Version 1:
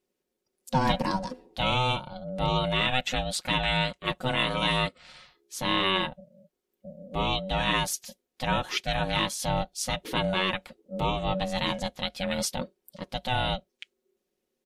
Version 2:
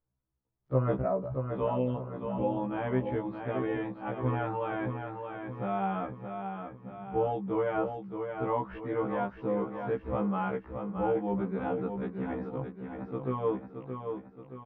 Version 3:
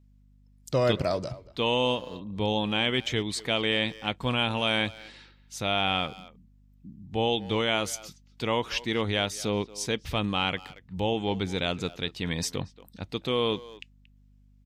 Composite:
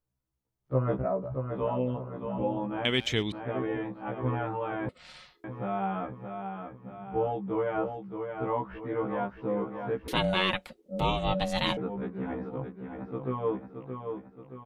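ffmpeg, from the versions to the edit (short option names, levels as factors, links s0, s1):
-filter_complex "[0:a]asplit=2[s0][s1];[1:a]asplit=4[s2][s3][s4][s5];[s2]atrim=end=2.852[s6];[2:a]atrim=start=2.848:end=3.322[s7];[s3]atrim=start=3.318:end=4.892[s8];[s0]atrim=start=4.888:end=5.442[s9];[s4]atrim=start=5.438:end=10.082[s10];[s1]atrim=start=10.078:end=11.772[s11];[s5]atrim=start=11.768[s12];[s6][s7]acrossfade=d=0.004:c1=hsin:c2=hsin[s13];[s13][s8]acrossfade=d=0.004:c1=hsin:c2=hsin[s14];[s14][s9]acrossfade=d=0.004:c1=hsin:c2=hsin[s15];[s15][s10]acrossfade=d=0.004:c1=hsin:c2=hsin[s16];[s16][s11]acrossfade=d=0.004:c1=hsin:c2=hsin[s17];[s17][s12]acrossfade=d=0.004:c1=hsin:c2=hsin"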